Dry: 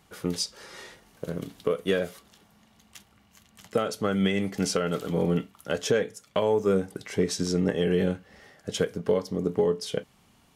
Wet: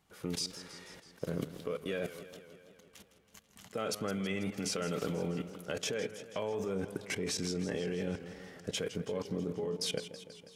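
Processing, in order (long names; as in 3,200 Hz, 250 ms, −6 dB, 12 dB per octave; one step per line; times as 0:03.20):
dynamic equaliser 2,400 Hz, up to +7 dB, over −57 dBFS, Q 5.9
output level in coarse steps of 19 dB
feedback echo with a swinging delay time 163 ms, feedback 66%, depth 130 cents, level −13 dB
level +3 dB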